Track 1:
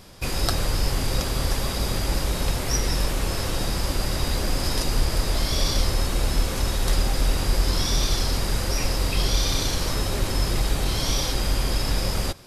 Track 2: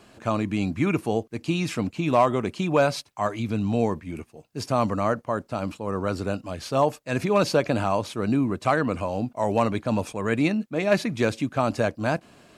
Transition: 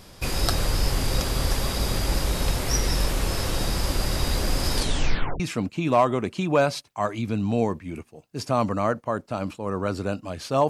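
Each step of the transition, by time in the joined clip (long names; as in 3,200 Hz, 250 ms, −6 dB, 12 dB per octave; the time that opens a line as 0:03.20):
track 1
0:04.75: tape stop 0.65 s
0:05.40: continue with track 2 from 0:01.61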